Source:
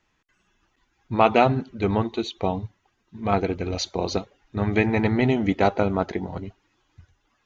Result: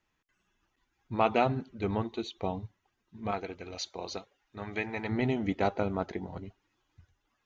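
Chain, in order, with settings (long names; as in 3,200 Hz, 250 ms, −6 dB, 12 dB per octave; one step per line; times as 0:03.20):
0:03.31–0:05.09: low-shelf EQ 420 Hz −11.5 dB
level −8.5 dB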